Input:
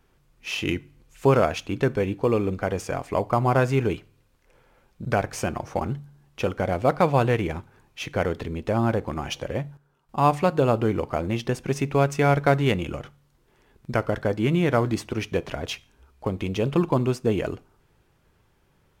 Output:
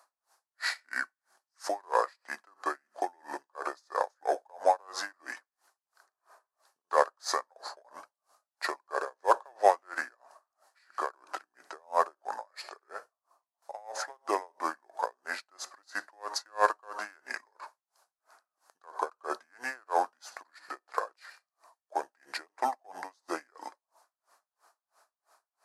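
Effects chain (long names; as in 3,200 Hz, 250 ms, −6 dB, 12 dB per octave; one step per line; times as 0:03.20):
high-pass filter 920 Hz 24 dB per octave
flat-topped bell 3,600 Hz −12 dB 1.1 octaves
wrong playback speed 45 rpm record played at 33 rpm
in parallel at −9 dB: soft clipping −21.5 dBFS, distortion −12 dB
on the sum: tremolo with a sine in dB 3 Hz, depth 38 dB
level +7 dB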